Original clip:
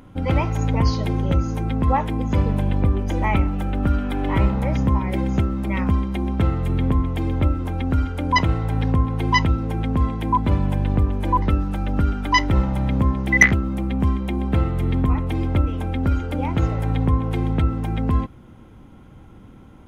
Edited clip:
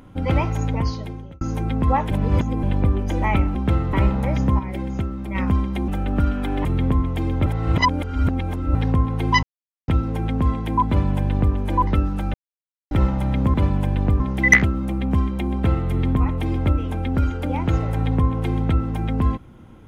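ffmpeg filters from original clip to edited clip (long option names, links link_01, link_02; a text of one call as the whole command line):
ffmpeg -i in.wav -filter_complex "[0:a]asplit=17[link_01][link_02][link_03][link_04][link_05][link_06][link_07][link_08][link_09][link_10][link_11][link_12][link_13][link_14][link_15][link_16][link_17];[link_01]atrim=end=1.41,asetpts=PTS-STARTPTS,afade=type=out:start_time=0.49:duration=0.92[link_18];[link_02]atrim=start=1.41:end=2.112,asetpts=PTS-STARTPTS,afade=type=in:duration=0.004:curve=hsin[link_19];[link_03]atrim=start=2.108:end=2.632,asetpts=PTS-STARTPTS,areverse[link_20];[link_04]atrim=start=2.628:end=3.552[link_21];[link_05]atrim=start=6.268:end=6.652[link_22];[link_06]atrim=start=4.318:end=4.982[link_23];[link_07]atrim=start=4.978:end=5.742,asetpts=PTS-STARTPTS,volume=-5dB[link_24];[link_08]atrim=start=5.738:end=6.272[link_25];[link_09]atrim=start=3.548:end=4.322[link_26];[link_10]atrim=start=6.648:end=7.462[link_27];[link_11]atrim=start=7.458:end=8.752,asetpts=PTS-STARTPTS,areverse[link_28];[link_12]atrim=start=8.748:end=9.43,asetpts=PTS-STARTPTS,afade=type=out:start_time=0.678:duration=0.004:curve=hsin,apad=pad_dur=0.45[link_29];[link_13]atrim=start=9.43:end=11.89,asetpts=PTS-STARTPTS,afade=type=in:duration=0.004:curve=hsin,afade=type=out:start_time=2.456:duration=0.004:curve=hsin[link_30];[link_14]atrim=start=11.89:end=12.46,asetpts=PTS-STARTPTS,volume=0[link_31];[link_15]atrim=start=12.46:end=13.092,asetpts=PTS-STARTPTS,afade=type=in:duration=0.004:curve=hsin[link_32];[link_16]atrim=start=10.428:end=11.092[link_33];[link_17]atrim=start=13.088[link_34];[link_18][link_19]concat=n=2:v=0:a=1[link_35];[link_35][link_20]acrossfade=duration=0.004:curve1=hsin:curve2=hsin[link_36];[link_36][link_21]acrossfade=duration=0.004:curve1=hsin:curve2=hsin[link_37];[link_37][link_22]acrossfade=duration=0.004:curve1=hsin:curve2=hsin[link_38];[link_38][link_23]acrossfade=duration=0.004:curve1=hsin:curve2=hsin[link_39];[link_39][link_24]acrossfade=duration=0.004:curve1=hsin:curve2=hsin[link_40];[link_40][link_25]acrossfade=duration=0.004:curve1=hsin:curve2=hsin[link_41];[link_41][link_26]acrossfade=duration=0.004:curve1=hsin:curve2=hsin[link_42];[link_42][link_27]acrossfade=duration=0.004:curve1=hsin:curve2=hsin[link_43];[link_43][link_28]acrossfade=duration=0.004:curve1=hsin:curve2=hsin[link_44];[link_29][link_30][link_31][link_32]concat=n=4:v=0:a=1[link_45];[link_44][link_45]acrossfade=duration=0.004:curve1=hsin:curve2=hsin[link_46];[link_46][link_33]acrossfade=duration=0.004:curve1=hsin:curve2=hsin[link_47];[link_47][link_34]acrossfade=duration=0.004:curve1=hsin:curve2=hsin" out.wav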